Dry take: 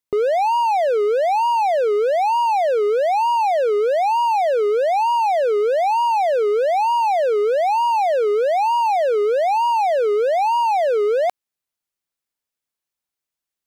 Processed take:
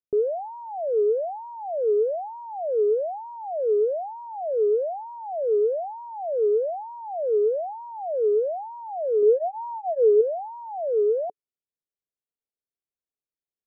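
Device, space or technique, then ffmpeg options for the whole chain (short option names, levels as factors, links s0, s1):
under water: -filter_complex "[0:a]asettb=1/sr,asplit=3[s0][s1][s2];[s0]atrim=end=9.224[s3];[s1]atrim=start=9.22:end=10.21,asetpts=PTS-STARTPTS,afade=t=in:d=0.004:c=qsin,afade=t=out:st=0.986:d=0.004:c=qsin,aecho=1:1:4.3:0.91,atrim=end_sample=43659[s4];[s2]atrim=start=10.206[s5];[s3][s4]acrossfade=d=0.004:c1=hsin:c2=qsin[s6];[s6][s5]acrossfade=d=0.004:c1=qsin:c2=hsin,lowpass=f=650:w=0.5412,lowpass=f=650:w=1.3066,equalizer=f=430:t=o:w=0.24:g=6,volume=0.422"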